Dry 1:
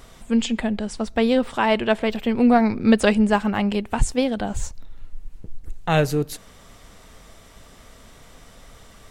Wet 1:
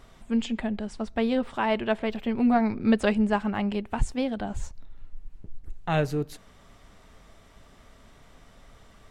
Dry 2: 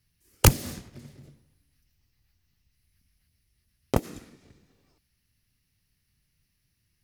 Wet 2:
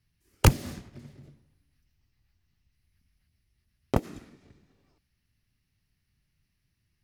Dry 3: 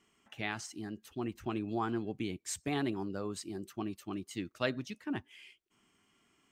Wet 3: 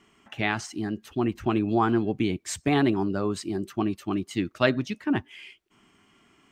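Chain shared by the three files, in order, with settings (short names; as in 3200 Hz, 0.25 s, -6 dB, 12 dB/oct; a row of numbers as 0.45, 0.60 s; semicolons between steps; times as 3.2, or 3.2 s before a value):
high shelf 4900 Hz -9.5 dB; notch 490 Hz, Q 12; match loudness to -27 LUFS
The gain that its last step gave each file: -5.5, -0.5, +12.0 dB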